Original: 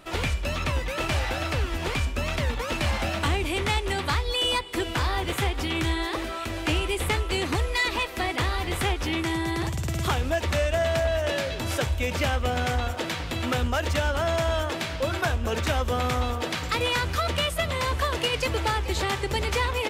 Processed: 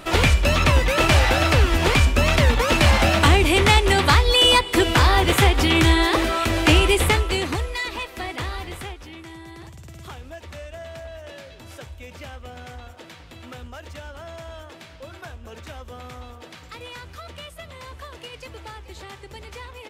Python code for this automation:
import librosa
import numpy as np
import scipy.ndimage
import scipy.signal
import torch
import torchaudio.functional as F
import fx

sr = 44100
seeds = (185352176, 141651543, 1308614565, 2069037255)

y = fx.gain(x, sr, db=fx.line((6.9, 10.0), (7.81, -3.0), (8.58, -3.0), (9.08, -13.0)))